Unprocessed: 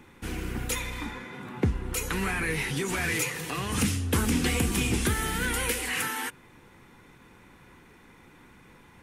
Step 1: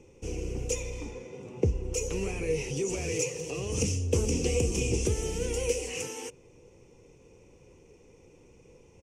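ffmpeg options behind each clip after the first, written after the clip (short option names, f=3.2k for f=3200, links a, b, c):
-af "firequalizer=gain_entry='entry(100,0);entry(230,-8);entry(470,8);entry(710,-7);entry(1600,-25);entry(2600,-3);entry(3800,-17);entry(5800,6);entry(11000,-17);entry(15000,-23)':delay=0.05:min_phase=1"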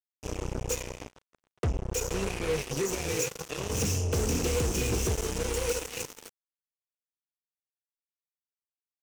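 -af "volume=24.5dB,asoftclip=hard,volume=-24.5dB,acrusher=bits=4:mix=0:aa=0.5"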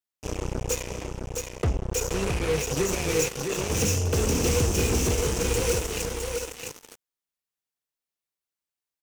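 -af "aecho=1:1:661:0.596,volume=3.5dB"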